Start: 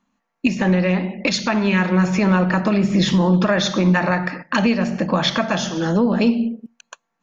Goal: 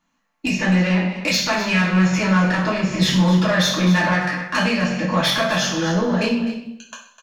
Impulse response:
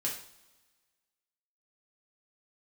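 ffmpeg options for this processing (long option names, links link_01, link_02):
-filter_complex "[0:a]equalizer=frequency=280:width=0.55:gain=-8,asoftclip=type=tanh:threshold=-17.5dB,aecho=1:1:254:0.224[link_01];[1:a]atrim=start_sample=2205,afade=type=out:start_time=0.4:duration=0.01,atrim=end_sample=18081[link_02];[link_01][link_02]afir=irnorm=-1:irlink=0,volume=2dB"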